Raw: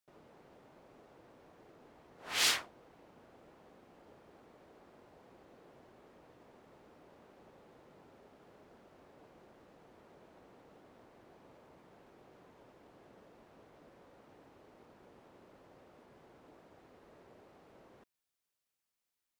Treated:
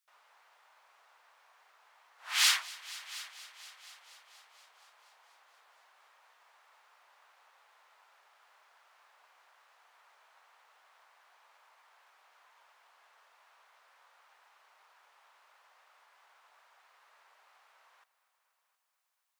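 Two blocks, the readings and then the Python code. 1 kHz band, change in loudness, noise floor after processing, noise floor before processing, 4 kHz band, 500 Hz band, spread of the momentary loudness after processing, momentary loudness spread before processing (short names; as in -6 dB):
+2.0 dB, 0.0 dB, -79 dBFS, under -85 dBFS, +4.0 dB, -14.0 dB, 24 LU, 8 LU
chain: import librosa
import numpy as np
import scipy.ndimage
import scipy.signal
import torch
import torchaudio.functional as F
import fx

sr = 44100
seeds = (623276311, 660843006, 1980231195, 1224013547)

p1 = scipy.signal.sosfilt(scipy.signal.butter(4, 960.0, 'highpass', fs=sr, output='sos'), x)
p2 = p1 + fx.echo_heads(p1, sr, ms=238, heads='all three', feedback_pct=50, wet_db=-21.0, dry=0)
y = p2 * librosa.db_to_amplitude(4.0)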